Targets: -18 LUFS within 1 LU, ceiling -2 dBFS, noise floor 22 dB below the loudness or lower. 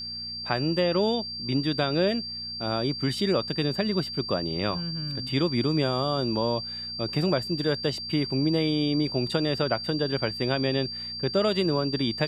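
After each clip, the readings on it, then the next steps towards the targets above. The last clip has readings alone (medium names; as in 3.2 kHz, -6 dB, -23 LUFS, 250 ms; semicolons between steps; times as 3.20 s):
hum 60 Hz; highest harmonic 240 Hz; hum level -45 dBFS; steady tone 4.7 kHz; tone level -33 dBFS; loudness -26.5 LUFS; peak level -8.0 dBFS; loudness target -18.0 LUFS
-> de-hum 60 Hz, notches 4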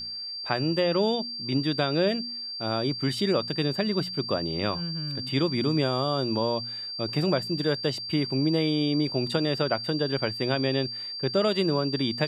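hum not found; steady tone 4.7 kHz; tone level -33 dBFS
-> band-stop 4.7 kHz, Q 30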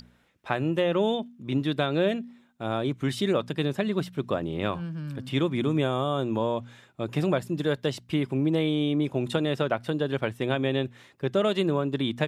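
steady tone not found; loudness -27.5 LUFS; peak level -8.5 dBFS; loudness target -18.0 LUFS
-> trim +9.5 dB; peak limiter -2 dBFS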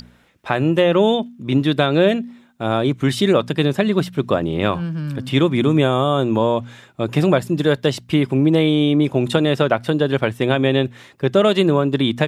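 loudness -18.0 LUFS; peak level -2.0 dBFS; noise floor -51 dBFS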